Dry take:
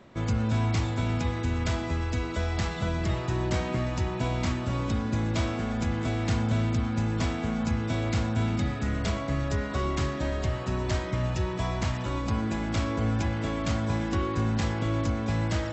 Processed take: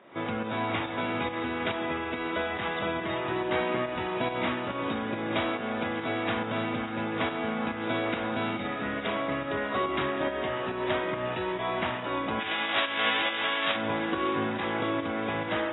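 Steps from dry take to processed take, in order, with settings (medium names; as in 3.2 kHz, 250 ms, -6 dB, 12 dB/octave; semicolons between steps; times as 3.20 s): 12.39–13.75 s: formants flattened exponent 0.1; volume shaper 140 bpm, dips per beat 1, -7 dB, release 180 ms; band-pass 340–4300 Hz; two-band feedback delay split 1.7 kHz, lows 143 ms, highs 592 ms, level -15.5 dB; trim +5 dB; AAC 16 kbps 16 kHz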